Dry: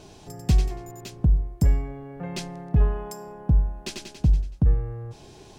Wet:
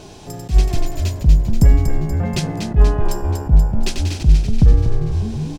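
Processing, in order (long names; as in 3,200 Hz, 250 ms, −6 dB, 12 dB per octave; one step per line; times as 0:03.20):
echo with shifted repeats 240 ms, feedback 59%, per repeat −68 Hz, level −6 dB
level that may rise only so fast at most 270 dB per second
level +8.5 dB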